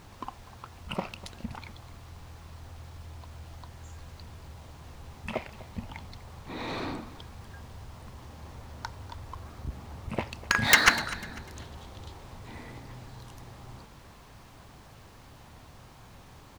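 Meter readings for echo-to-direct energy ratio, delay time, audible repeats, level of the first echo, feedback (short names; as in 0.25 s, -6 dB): -17.5 dB, 0.248 s, 2, -18.0 dB, 35%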